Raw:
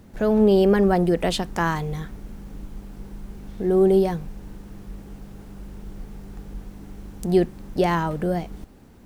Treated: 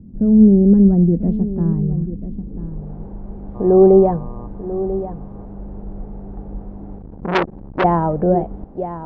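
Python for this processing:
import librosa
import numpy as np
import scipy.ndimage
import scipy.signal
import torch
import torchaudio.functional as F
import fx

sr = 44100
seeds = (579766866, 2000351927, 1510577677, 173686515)

p1 = fx.filter_sweep_lowpass(x, sr, from_hz=220.0, to_hz=730.0, start_s=2.22, end_s=2.91, q=1.7)
p2 = fx.dmg_buzz(p1, sr, base_hz=120.0, harmonics=10, level_db=-42.0, tilt_db=-3, odd_only=False, at=(3.54, 4.46), fade=0.02)
p3 = p2 + fx.echo_single(p2, sr, ms=991, db=-12.5, dry=0)
p4 = fx.transformer_sat(p3, sr, knee_hz=1700.0, at=(6.98, 7.84))
y = p4 * librosa.db_to_amplitude(5.5)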